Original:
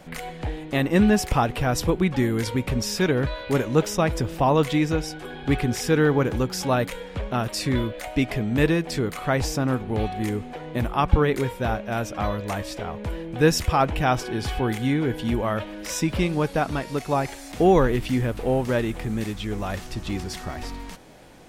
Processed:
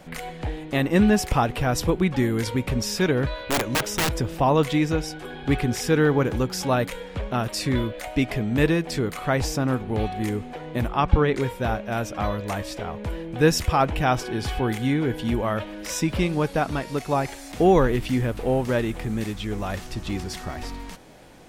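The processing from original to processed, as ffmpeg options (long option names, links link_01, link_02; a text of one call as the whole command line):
ffmpeg -i in.wav -filter_complex "[0:a]asettb=1/sr,asplit=3[link_01][link_02][link_03];[link_01]atrim=end=3.334[link_04];[link_02]atrim=start=3.33:end=4.17,asetpts=PTS-STARTPTS,afade=type=in:duration=0.004:curve=qsin,afade=type=out:start_time=0.836:duration=0.004:curve=qsin,aeval=exprs='(mod(6.68*val(0)+1,2)-1)/6.68':channel_layout=same[link_05];[link_03]atrim=start=4.166[link_06];[link_04][link_05]acrossfade=duration=0.004:curve1=hsin:curve2=qsin[link_07];[link_07][link_06]acrossfade=duration=0.004:curve1=qsin:curve2=hsin,asplit=3[link_08][link_09][link_10];[link_08]afade=type=out:start_time=10.88:duration=0.02[link_11];[link_09]lowpass=7100,afade=type=in:start_time=10.88:duration=0.02,afade=type=out:start_time=11.4:duration=0.02[link_12];[link_10]afade=type=in:start_time=11.4:duration=0.02[link_13];[link_11][link_12][link_13]amix=inputs=3:normalize=0" out.wav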